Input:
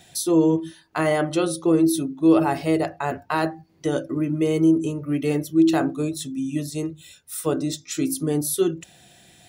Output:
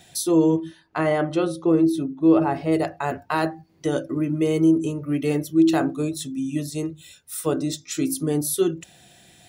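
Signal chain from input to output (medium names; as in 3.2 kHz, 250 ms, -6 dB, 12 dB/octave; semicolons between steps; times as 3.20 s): 0.58–2.71 s: low-pass 3.1 kHz -> 1.5 kHz 6 dB/octave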